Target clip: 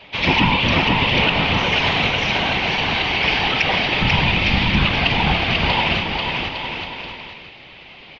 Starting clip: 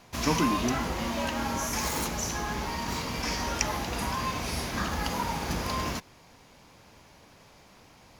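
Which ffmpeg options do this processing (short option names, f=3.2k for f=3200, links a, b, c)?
-filter_complex "[0:a]asplit=3[a][b][c];[a]afade=t=out:st=4:d=0.02[d];[b]asubboost=boost=10.5:cutoff=210,afade=t=in:st=4:d=0.02,afade=t=out:st=4.84:d=0.02[e];[c]afade=t=in:st=4.84:d=0.02[f];[d][e][f]amix=inputs=3:normalize=0,aexciter=amount=6.8:drive=4.6:freq=2.4k,highpass=f=190:t=q:w=0.5412,highpass=f=190:t=q:w=1.307,lowpass=f=3.2k:t=q:w=0.5176,lowpass=f=3.2k:t=q:w=0.7071,lowpass=f=3.2k:t=q:w=1.932,afreqshift=-110,afftfilt=real='hypot(re,im)*cos(2*PI*random(0))':imag='hypot(re,im)*sin(2*PI*random(1))':win_size=512:overlap=0.75,aecho=1:1:490|857.5|1133|1340|1495:0.631|0.398|0.251|0.158|0.1,alimiter=level_in=18.5dB:limit=-1dB:release=50:level=0:latency=1,volume=-4dB"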